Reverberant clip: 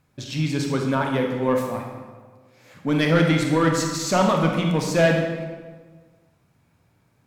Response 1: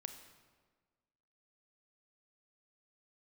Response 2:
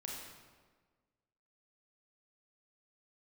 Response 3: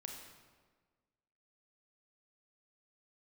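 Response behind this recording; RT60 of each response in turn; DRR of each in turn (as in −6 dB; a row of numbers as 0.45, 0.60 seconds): 3; 1.5, 1.5, 1.5 seconds; 7.5, −2.5, 1.5 decibels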